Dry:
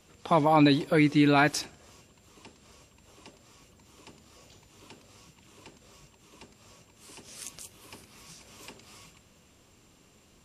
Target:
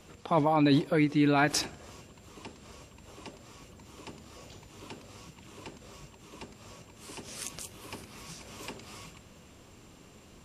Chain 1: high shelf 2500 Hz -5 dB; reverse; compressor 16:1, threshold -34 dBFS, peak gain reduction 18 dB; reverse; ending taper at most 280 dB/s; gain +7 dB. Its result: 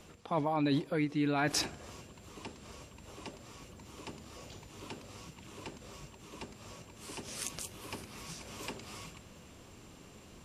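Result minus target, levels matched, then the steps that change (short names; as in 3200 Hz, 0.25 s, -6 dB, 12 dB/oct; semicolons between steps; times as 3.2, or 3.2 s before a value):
compressor: peak gain reduction +6.5 dB
change: compressor 16:1, threshold -27 dBFS, peak gain reduction 11.5 dB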